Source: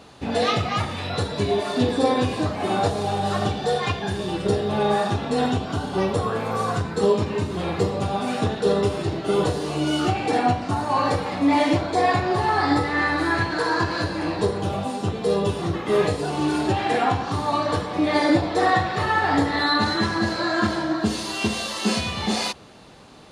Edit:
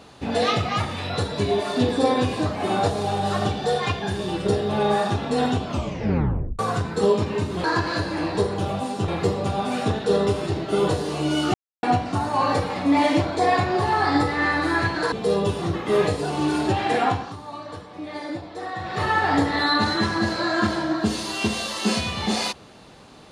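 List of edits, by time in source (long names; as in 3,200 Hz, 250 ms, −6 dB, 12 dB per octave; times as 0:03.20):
0:05.63: tape stop 0.96 s
0:10.10–0:10.39: silence
0:13.68–0:15.12: move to 0:07.64
0:17.08–0:19.04: duck −13 dB, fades 0.28 s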